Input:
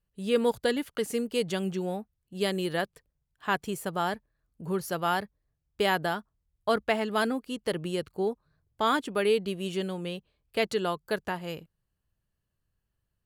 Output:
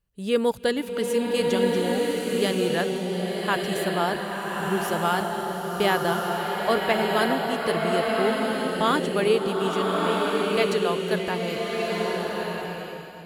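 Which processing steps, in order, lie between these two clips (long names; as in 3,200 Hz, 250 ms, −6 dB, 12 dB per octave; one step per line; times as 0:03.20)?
slow-attack reverb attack 1,340 ms, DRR −1.5 dB
level +2.5 dB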